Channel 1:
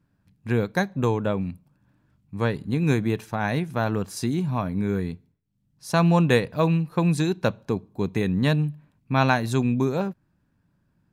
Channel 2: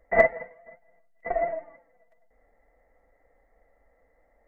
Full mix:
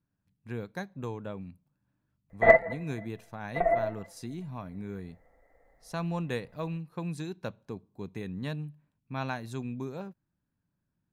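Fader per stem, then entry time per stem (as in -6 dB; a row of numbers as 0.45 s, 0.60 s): -14.0 dB, +1.0 dB; 0.00 s, 2.30 s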